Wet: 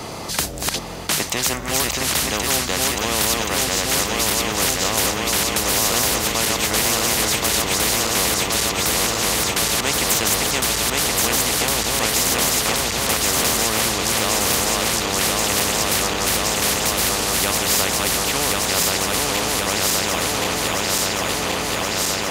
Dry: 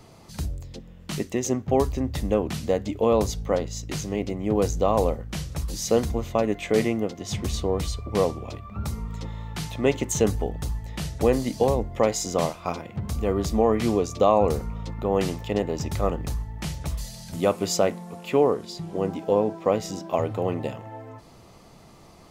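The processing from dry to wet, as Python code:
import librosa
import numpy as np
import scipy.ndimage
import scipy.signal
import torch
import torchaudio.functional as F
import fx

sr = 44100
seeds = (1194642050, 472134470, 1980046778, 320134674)

y = fx.reverse_delay_fb(x, sr, ms=538, feedback_pct=84, wet_db=-2.5)
y = fx.highpass(y, sr, hz=95.0, slope=6)
y = fx.spectral_comp(y, sr, ratio=4.0)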